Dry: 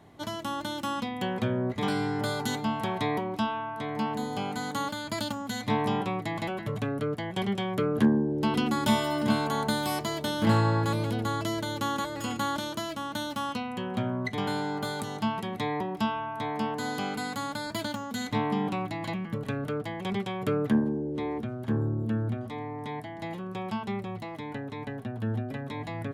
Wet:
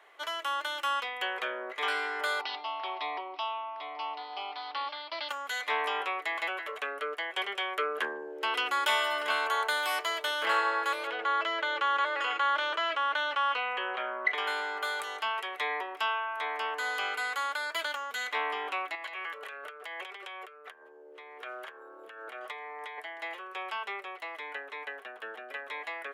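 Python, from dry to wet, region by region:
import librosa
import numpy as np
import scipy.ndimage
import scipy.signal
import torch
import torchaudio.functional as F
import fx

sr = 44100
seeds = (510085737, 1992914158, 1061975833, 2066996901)

y = fx.chain(x, sr, fx.fixed_phaser(hz=320.0, stages=8),
    fx.resample_bad(factor=4, down='none', up='filtered'), at=(2.41, 5.29))
y = fx.chain(y, sr, fx.bandpass_edges(low_hz=190.0, high_hz=3100.0),
    fx.env_flatten(amount_pct=70), at=(11.07, 14.35))
y = fx.chain(y, sr, fx.highpass(hz=360.0, slope=12),
    fx.over_compress(threshold_db=-42.0, ratio=-1.0), at=(18.95, 22.98))
y = scipy.signal.sosfilt(scipy.signal.butter(6, 430.0, 'highpass', fs=sr, output='sos'), y)
y = fx.band_shelf(y, sr, hz=1900.0, db=10.0, octaves=1.7)
y = y * 10.0 ** (-3.5 / 20.0)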